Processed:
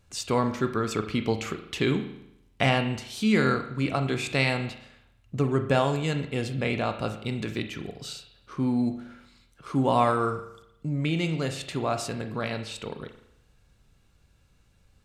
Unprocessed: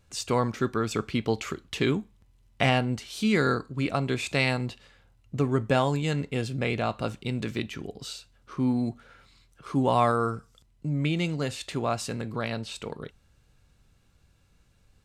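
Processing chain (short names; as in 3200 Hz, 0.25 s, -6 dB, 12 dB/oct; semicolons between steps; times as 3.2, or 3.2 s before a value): on a send: high shelf 4200 Hz +10 dB + reverb RT60 0.80 s, pre-delay 37 ms, DRR 7.5 dB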